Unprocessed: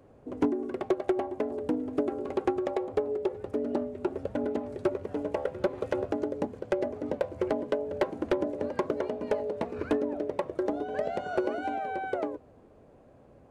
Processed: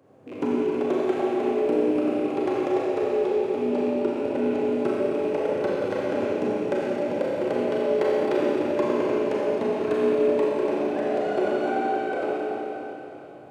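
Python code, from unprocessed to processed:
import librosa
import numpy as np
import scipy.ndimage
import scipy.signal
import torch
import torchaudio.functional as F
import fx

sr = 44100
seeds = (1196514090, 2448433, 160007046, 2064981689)

y = fx.rattle_buzz(x, sr, strikes_db=-41.0, level_db=-37.0)
y = scipy.signal.sosfilt(scipy.signal.butter(4, 110.0, 'highpass', fs=sr, output='sos'), y)
y = fx.rev_schroeder(y, sr, rt60_s=3.6, comb_ms=29, drr_db=-6.5)
y = F.gain(torch.from_numpy(y), -1.5).numpy()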